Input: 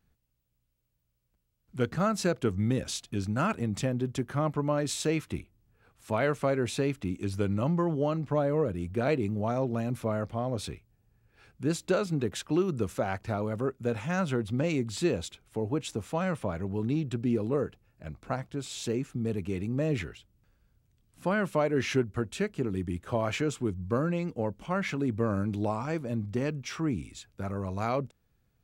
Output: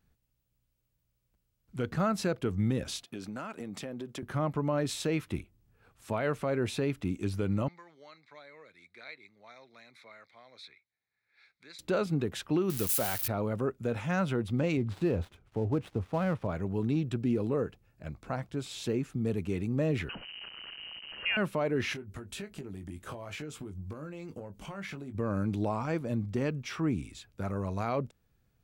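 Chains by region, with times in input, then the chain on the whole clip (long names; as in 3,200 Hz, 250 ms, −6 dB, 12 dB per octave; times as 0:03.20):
0:03.04–0:04.23: high-pass filter 240 Hz + downward compressor, threshold −35 dBFS
0:07.68–0:11.79: pair of resonant band-passes 2,900 Hz, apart 0.84 octaves + multiband upward and downward compressor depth 40%
0:12.70–0:13.28: spike at every zero crossing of −25 dBFS + high-shelf EQ 2,700 Hz +10.5 dB
0:14.77–0:16.47: gap after every zero crossing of 0.1 ms + low-pass filter 1,900 Hz 6 dB per octave + parametric band 87 Hz +7 dB 0.88 octaves
0:20.09–0:21.37: converter with a step at zero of −37 dBFS + high-pass filter 67 Hz + voice inversion scrambler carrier 3,000 Hz
0:21.93–0:25.15: downward compressor 20 to 1, threshold −37 dBFS + high-shelf EQ 6,500 Hz +7.5 dB + double-tracking delay 20 ms −8 dB
whole clip: dynamic equaliser 7,100 Hz, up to −6 dB, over −54 dBFS, Q 1.2; brickwall limiter −20 dBFS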